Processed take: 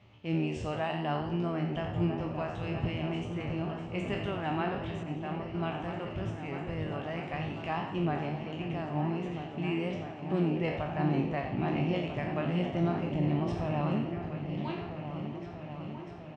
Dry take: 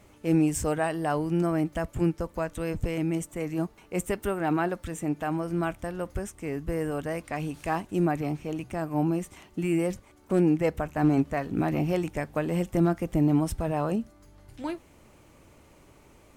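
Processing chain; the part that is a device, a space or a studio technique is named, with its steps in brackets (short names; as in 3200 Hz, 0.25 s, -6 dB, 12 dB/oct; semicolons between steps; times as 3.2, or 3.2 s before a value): spectral trails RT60 0.51 s; frequency-shifting delay pedal into a guitar cabinet (frequency-shifting echo 86 ms, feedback 46%, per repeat +74 Hz, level -10 dB; speaker cabinet 75–4400 Hz, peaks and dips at 110 Hz +10 dB, 300 Hz -5 dB, 470 Hz -7 dB, 1500 Hz -5 dB, 2900 Hz +7 dB); 5.03–5.55 expander -25 dBFS; repeats that get brighter 0.647 s, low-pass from 400 Hz, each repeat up 2 oct, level -6 dB; gain -5.5 dB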